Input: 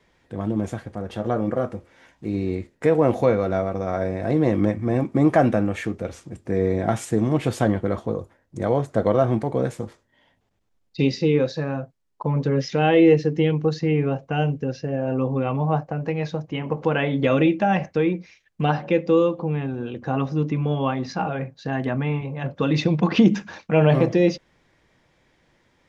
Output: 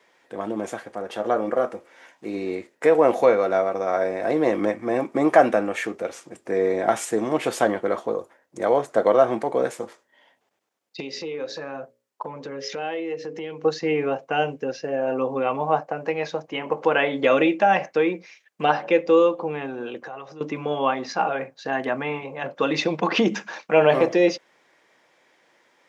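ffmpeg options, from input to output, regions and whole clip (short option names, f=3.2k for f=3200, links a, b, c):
-filter_complex "[0:a]asettb=1/sr,asplit=3[a][b][c];[a]atrim=end=11.004[d];[b]atrim=start=11:end=13.65,asetpts=PTS-STARTPTS,afade=t=in:d=0.004:c=qsin,afade=t=out:st=2.646:d=0.004:c=qsin,bandreject=f=60:t=h:w=6,bandreject=f=120:t=h:w=6,bandreject=f=180:t=h:w=6,bandreject=f=240:t=h:w=6,bandreject=f=300:t=h:w=6,bandreject=f=360:t=h:w=6,bandreject=f=420:t=h:w=6,bandreject=f=480:t=h:w=6,bandreject=f=540:t=h:w=6,bandreject=f=600:t=h:w=6,acompressor=threshold=-28dB:ratio=5:attack=3.2:release=140:knee=1:detection=peak[e];[c]atrim=start=13.646[f];[d][e]acrossfade=d=0.004:c1=hsin:c2=qsin[g];[g][f]acrossfade=d=0.004:c1=qsin:c2=hsin,asettb=1/sr,asplit=3[h][i][j];[h]atrim=end=20.004[k];[i]atrim=start=20:end=20.41,asetpts=PTS-STARTPTS,afade=t=in:d=0.004:c=qsin,afade=t=out:st=0.406:d=0.004:c=qsin,equalizer=f=260:t=o:w=0.26:g=-12.5,acompressor=threshold=-34dB:ratio=5:attack=3.2:release=140:knee=1:detection=peak[l];[j]atrim=start=20.406[m];[k][l]acrossfade=d=0.004:c1=hsin:c2=qsin[n];[n][m]acrossfade=d=0.004:c1=qsin:c2=hsin,highpass=440,equalizer=f=3.9k:t=o:w=0.77:g=-2.5,volume=4.5dB"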